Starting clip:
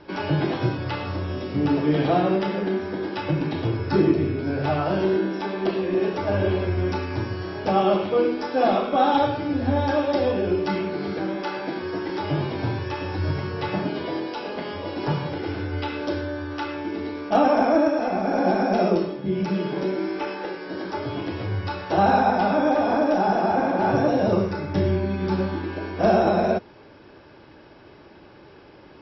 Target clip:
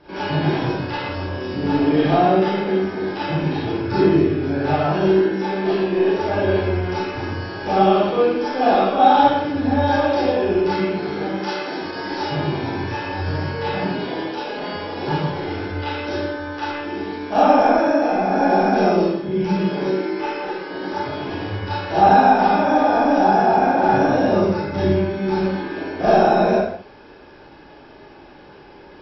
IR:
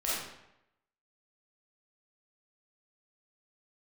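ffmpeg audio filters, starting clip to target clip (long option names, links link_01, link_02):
-filter_complex "[0:a]asettb=1/sr,asplit=3[link_01][link_02][link_03];[link_01]atrim=end=11.364[link_04];[link_02]atrim=start=11.36:end=12.3,asetpts=PTS-STARTPTS,afade=type=in:duration=0.004:curve=qsin,afade=type=out:start_time=0.936:duration=0.004:curve=qsin,bass=frequency=250:gain=-3,treble=frequency=4000:gain=8[link_05];[link_03]atrim=start=12.296[link_06];[link_04][link_05]acrossfade=duration=0.004:curve1=hsin:curve2=qsin[link_07];[link_07][link_06]acrossfade=duration=0.004:curve1=qsin:curve2=hsin[link_08];[1:a]atrim=start_sample=2205,afade=type=out:start_time=0.38:duration=0.01,atrim=end_sample=17199,asetrate=57330,aresample=44100[link_09];[link_08][link_09]afir=irnorm=-1:irlink=0"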